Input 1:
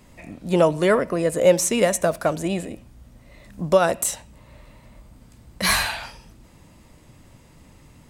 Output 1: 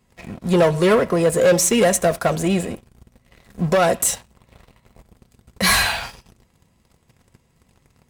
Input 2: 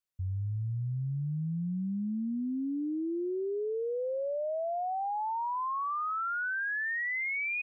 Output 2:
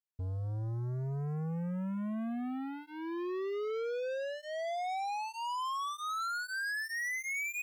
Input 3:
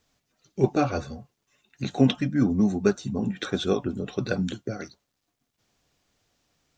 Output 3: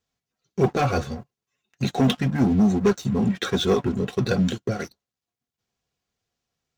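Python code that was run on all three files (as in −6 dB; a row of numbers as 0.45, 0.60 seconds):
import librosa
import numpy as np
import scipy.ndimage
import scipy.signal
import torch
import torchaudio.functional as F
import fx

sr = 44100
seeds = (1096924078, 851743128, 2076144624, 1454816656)

y = fx.leveller(x, sr, passes=3)
y = fx.notch_comb(y, sr, f0_hz=300.0)
y = F.gain(torch.from_numpy(y), -4.0).numpy()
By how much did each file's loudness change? +3.0, −3.5, +3.0 LU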